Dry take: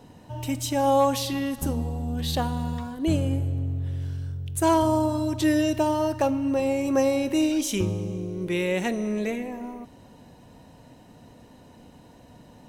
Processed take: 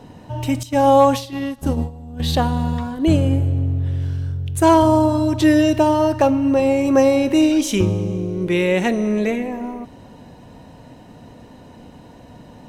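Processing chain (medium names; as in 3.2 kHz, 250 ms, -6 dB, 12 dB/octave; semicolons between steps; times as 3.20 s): 0.63–2.20 s: gate -26 dBFS, range -14 dB; treble shelf 5.9 kHz -8 dB; trim +8 dB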